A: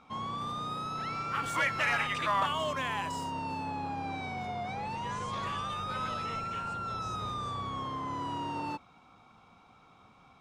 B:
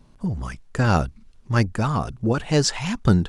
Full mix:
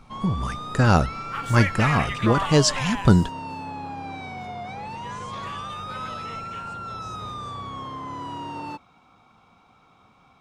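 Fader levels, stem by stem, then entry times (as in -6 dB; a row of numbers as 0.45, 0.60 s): +2.0, +1.5 dB; 0.00, 0.00 s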